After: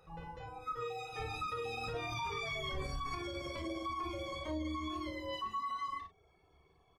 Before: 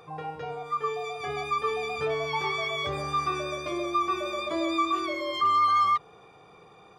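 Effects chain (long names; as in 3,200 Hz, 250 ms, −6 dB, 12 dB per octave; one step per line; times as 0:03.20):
sub-octave generator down 2 octaves, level −2 dB
source passing by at 0:02.52, 22 m/s, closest 6.6 metres
high-shelf EQ 5,200 Hz +4.5 dB
notch filter 7,300 Hz, Q 19
ambience of single reflections 29 ms −7 dB, 55 ms −4 dB
downward compressor, threshold −36 dBFS, peak gain reduction 11 dB
low-shelf EQ 87 Hz +12 dB
hum removal 45.52 Hz, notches 6
brickwall limiter −34.5 dBFS, peak gain reduction 9 dB
reverb reduction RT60 0.69 s
double-tracking delay 42 ms −9 dB
level +4.5 dB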